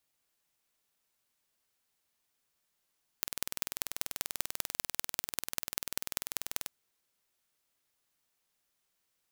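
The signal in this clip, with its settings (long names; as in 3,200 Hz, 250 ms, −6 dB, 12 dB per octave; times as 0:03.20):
impulse train 20.4 per second, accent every 4, −2.5 dBFS 3.48 s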